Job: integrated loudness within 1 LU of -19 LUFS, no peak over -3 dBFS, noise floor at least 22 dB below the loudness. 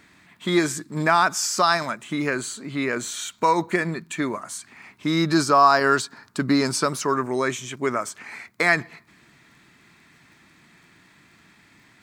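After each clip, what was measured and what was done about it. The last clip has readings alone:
tick rate 19 per s; loudness -22.5 LUFS; peak level -3.5 dBFS; loudness target -19.0 LUFS
-> de-click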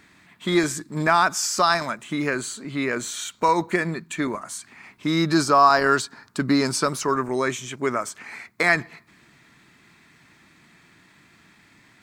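tick rate 0.33 per s; loudness -22.5 LUFS; peak level -3.5 dBFS; loudness target -19.0 LUFS
-> trim +3.5 dB; peak limiter -3 dBFS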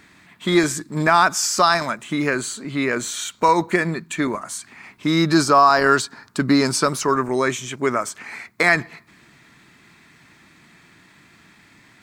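loudness -19.5 LUFS; peak level -3.0 dBFS; noise floor -53 dBFS

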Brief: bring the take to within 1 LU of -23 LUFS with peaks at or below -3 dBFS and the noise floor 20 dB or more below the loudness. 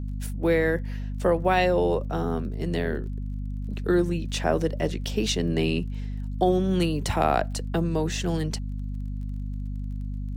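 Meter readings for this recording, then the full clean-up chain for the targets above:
tick rate 27 per s; hum 50 Hz; highest harmonic 250 Hz; hum level -29 dBFS; loudness -26.5 LUFS; peak level -8.5 dBFS; loudness target -23.0 LUFS
-> de-click; de-hum 50 Hz, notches 5; trim +3.5 dB

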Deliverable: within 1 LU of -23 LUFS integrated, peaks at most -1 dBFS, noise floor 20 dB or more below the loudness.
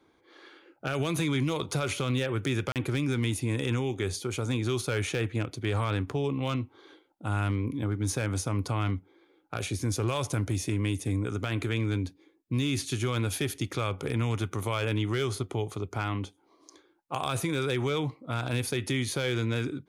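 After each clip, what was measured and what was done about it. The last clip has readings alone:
clipped samples 0.4%; clipping level -20.0 dBFS; dropouts 1; longest dropout 38 ms; loudness -30.5 LUFS; peak level -20.0 dBFS; loudness target -23.0 LUFS
-> clip repair -20 dBFS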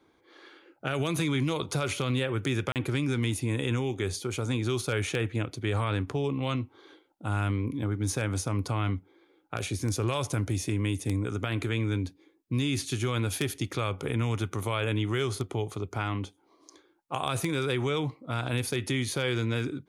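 clipped samples 0.0%; dropouts 1; longest dropout 38 ms
-> interpolate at 2.72 s, 38 ms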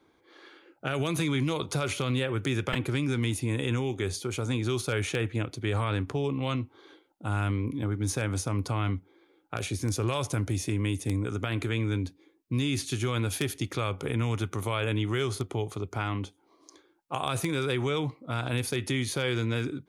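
dropouts 0; loudness -30.5 LUFS; peak level -11.0 dBFS; loudness target -23.0 LUFS
-> trim +7.5 dB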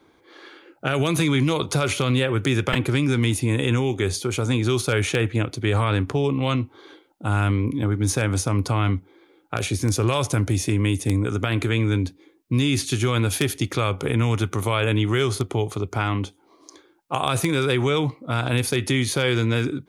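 loudness -23.0 LUFS; peak level -3.5 dBFS; noise floor -58 dBFS

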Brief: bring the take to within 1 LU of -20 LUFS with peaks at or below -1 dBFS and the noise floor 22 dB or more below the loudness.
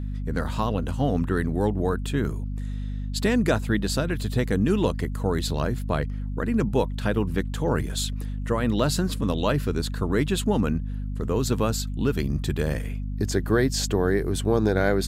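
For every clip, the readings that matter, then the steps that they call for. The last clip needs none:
hum 50 Hz; highest harmonic 250 Hz; hum level -27 dBFS; loudness -25.5 LUFS; peak level -9.0 dBFS; loudness target -20.0 LUFS
-> de-hum 50 Hz, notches 5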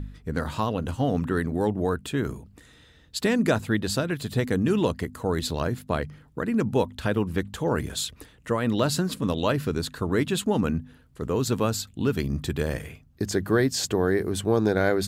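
hum not found; loudness -26.5 LUFS; peak level -10.0 dBFS; loudness target -20.0 LUFS
-> trim +6.5 dB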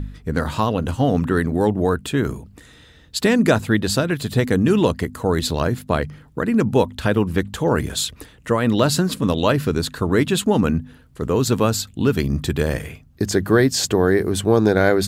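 loudness -20.0 LUFS; peak level -3.5 dBFS; noise floor -49 dBFS

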